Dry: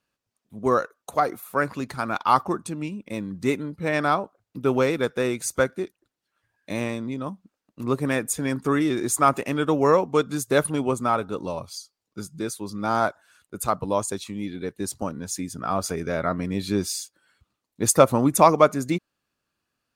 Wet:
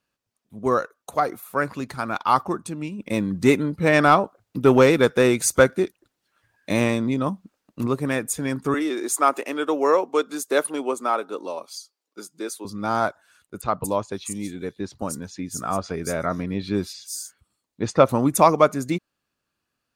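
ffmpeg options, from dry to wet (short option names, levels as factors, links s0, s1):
-filter_complex "[0:a]asplit=3[s0][s1][s2];[s0]afade=t=out:st=2.98:d=0.02[s3];[s1]acontrast=89,afade=t=in:st=2.98:d=0.02,afade=t=out:st=7.86:d=0.02[s4];[s2]afade=t=in:st=7.86:d=0.02[s5];[s3][s4][s5]amix=inputs=3:normalize=0,asettb=1/sr,asplit=3[s6][s7][s8];[s6]atrim=end=8.744[s9];[s7]atrim=start=8.74:end=12.65,asetpts=PTS-STARTPTS,afade=t=in:d=0.004:c=qsin,afade=t=out:st=3.906:d=0.004:c=qsin,highpass=f=290:w=0.5412,highpass=f=290:w=1.3066[s10];[s8]atrim=start=12.646[s11];[s9][s10]acrossfade=d=0.004:c1=hsin:c2=qsin[s12];[s12][s11]acrossfade=d=0.004:c1=qsin:c2=hsin,asettb=1/sr,asplit=3[s13][s14][s15];[s13]atrim=end=13.614[s16];[s14]atrim=start=13.61:end=18.09,asetpts=PTS-STARTPTS,afade=t=in:d=0.004:c=qsin,afade=t=out:st=4.476:d=0.004:c=qsin,acrossover=split=4900[s17][s18];[s18]adelay=230[s19];[s17][s19]amix=inputs=2:normalize=0,atrim=end_sample=197568[s20];[s15]atrim=start=18.086[s21];[s16][s20]acrossfade=d=0.004:c1=hsin:c2=qsin[s22];[s22][s21]acrossfade=d=0.004:c1=qsin:c2=hsin"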